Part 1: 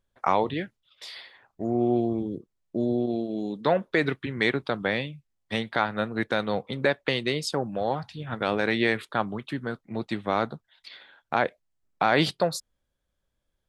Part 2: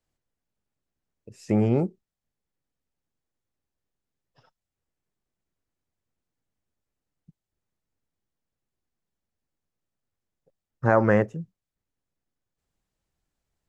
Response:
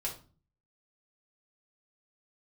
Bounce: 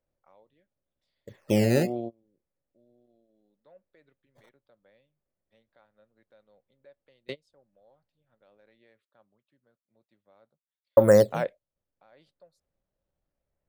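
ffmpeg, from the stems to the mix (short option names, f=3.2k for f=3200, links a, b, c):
-filter_complex "[0:a]volume=-10dB[a];[1:a]lowpass=f=2.4k:w=0.5412,lowpass=f=2.4k:w=1.3066,equalizer=f=1.4k:t=o:w=2.2:g=-2.5,acrusher=samples=11:mix=1:aa=0.000001:lfo=1:lforange=17.6:lforate=0.71,volume=-2dB,asplit=3[b][c][d];[b]atrim=end=8.79,asetpts=PTS-STARTPTS,afade=t=out:st=8.786:d=0.004:c=hsin[e];[c]atrim=start=8.79:end=10.97,asetpts=PTS-STARTPTS,volume=0[f];[d]atrim=start=10.97,asetpts=PTS-STARTPTS,afade=t=in:d=0.004:c=hsin[g];[e][f][g]concat=n=3:v=0:a=1,asplit=2[h][i];[i]apad=whole_len=603506[j];[a][j]sidechaingate=range=-31dB:threshold=-56dB:ratio=16:detection=peak[k];[k][h]amix=inputs=2:normalize=0,equalizer=f=560:t=o:w=0.33:g=12.5"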